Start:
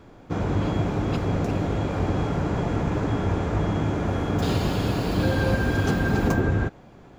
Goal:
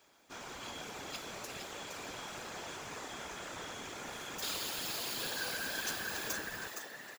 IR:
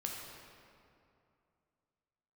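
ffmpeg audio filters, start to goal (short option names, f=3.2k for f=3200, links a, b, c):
-filter_complex "[0:a]aderivative,asplit=6[a][b][c][d][e][f];[b]adelay=465,afreqshift=130,volume=-6dB[g];[c]adelay=930,afreqshift=260,volume=-14dB[h];[d]adelay=1395,afreqshift=390,volume=-21.9dB[i];[e]adelay=1860,afreqshift=520,volume=-29.9dB[j];[f]adelay=2325,afreqshift=650,volume=-37.8dB[k];[a][g][h][i][j][k]amix=inputs=6:normalize=0,afftfilt=real='hypot(re,im)*cos(2*PI*random(0))':imag='hypot(re,im)*sin(2*PI*random(1))':win_size=512:overlap=0.75,volume=8.5dB"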